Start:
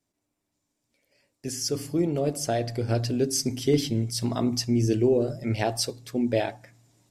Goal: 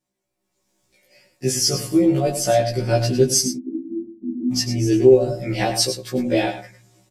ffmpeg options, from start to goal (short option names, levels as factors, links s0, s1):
-filter_complex "[0:a]aecho=1:1:5.5:0.67,dynaudnorm=f=390:g=3:m=4.47,asplit=3[s0][s1][s2];[s0]afade=t=out:st=3.45:d=0.02[s3];[s1]asuperpass=centerf=270:order=12:qfactor=2.1,afade=t=in:st=3.45:d=0.02,afade=t=out:st=4.51:d=0.02[s4];[s2]afade=t=in:st=4.51:d=0.02[s5];[s3][s4][s5]amix=inputs=3:normalize=0,aecho=1:1:103:0.316,afftfilt=real='re*1.73*eq(mod(b,3),0)':imag='im*1.73*eq(mod(b,3),0)':win_size=2048:overlap=0.75"